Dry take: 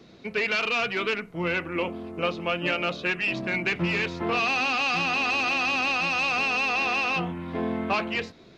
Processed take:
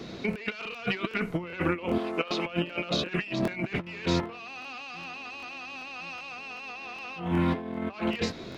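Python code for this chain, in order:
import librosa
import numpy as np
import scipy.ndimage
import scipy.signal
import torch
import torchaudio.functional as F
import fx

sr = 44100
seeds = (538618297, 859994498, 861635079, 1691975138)

y = fx.weighting(x, sr, curve='A', at=(1.98, 2.46))
y = fx.over_compress(y, sr, threshold_db=-34.0, ratio=-0.5)
y = fx.buffer_crackle(y, sr, first_s=0.31, period_s=0.39, block=1024, kind='repeat')
y = y * librosa.db_to_amplitude(3.0)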